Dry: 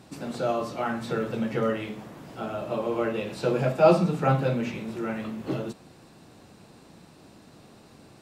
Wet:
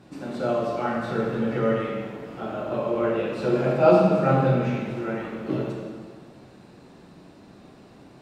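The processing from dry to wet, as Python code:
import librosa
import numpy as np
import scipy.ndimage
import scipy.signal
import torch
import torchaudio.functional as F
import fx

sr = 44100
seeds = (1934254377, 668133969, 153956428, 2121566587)

y = fx.high_shelf(x, sr, hz=4800.0, db=-11.0)
y = fx.rev_plate(y, sr, seeds[0], rt60_s=1.8, hf_ratio=0.9, predelay_ms=0, drr_db=-2.5)
y = y * 10.0 ** (-1.5 / 20.0)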